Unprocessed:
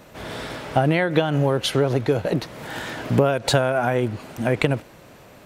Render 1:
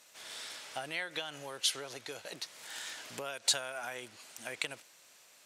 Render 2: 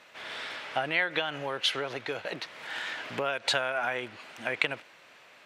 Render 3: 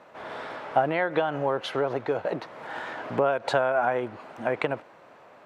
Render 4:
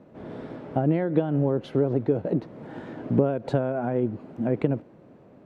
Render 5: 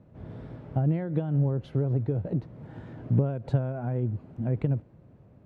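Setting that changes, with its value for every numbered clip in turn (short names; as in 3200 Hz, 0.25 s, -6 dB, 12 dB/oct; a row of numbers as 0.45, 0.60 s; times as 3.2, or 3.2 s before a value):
band-pass, frequency: 7400, 2500, 970, 260, 100 Hz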